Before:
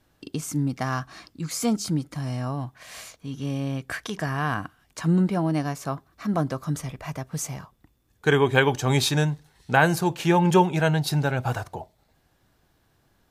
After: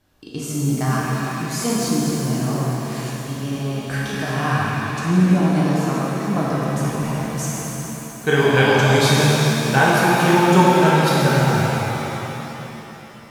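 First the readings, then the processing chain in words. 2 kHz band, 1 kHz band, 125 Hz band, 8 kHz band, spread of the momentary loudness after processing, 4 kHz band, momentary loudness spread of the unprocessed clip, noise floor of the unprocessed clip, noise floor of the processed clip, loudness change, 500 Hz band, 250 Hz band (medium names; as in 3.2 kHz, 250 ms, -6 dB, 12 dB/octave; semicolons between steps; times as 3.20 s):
+7.0 dB, +7.5 dB, +6.5 dB, +7.0 dB, 13 LU, +7.5 dB, 16 LU, -66 dBFS, -38 dBFS, +6.0 dB, +6.5 dB, +7.0 dB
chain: pitch-shifted reverb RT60 3.5 s, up +7 st, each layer -8 dB, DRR -6.5 dB; trim -1 dB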